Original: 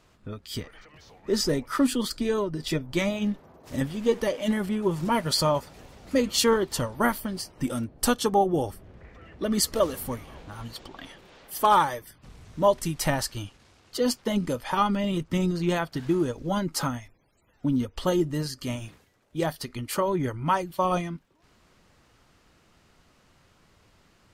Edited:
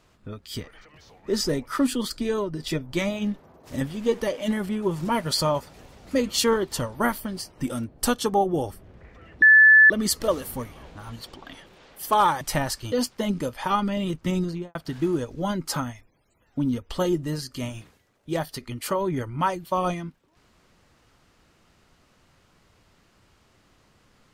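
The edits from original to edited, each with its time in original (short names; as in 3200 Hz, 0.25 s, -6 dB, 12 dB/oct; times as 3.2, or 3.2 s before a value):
9.42 add tone 1740 Hz -9.5 dBFS 0.48 s
11.93–12.93 cut
13.44–13.99 cut
15.5–15.82 studio fade out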